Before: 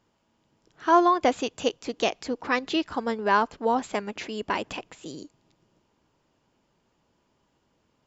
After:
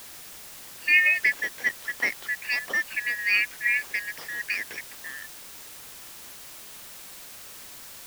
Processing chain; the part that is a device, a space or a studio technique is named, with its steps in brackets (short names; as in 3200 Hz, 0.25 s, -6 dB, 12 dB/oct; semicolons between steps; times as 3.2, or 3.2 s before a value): split-band scrambled radio (four-band scrambler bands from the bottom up 3142; BPF 300–3100 Hz; white noise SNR 14 dB)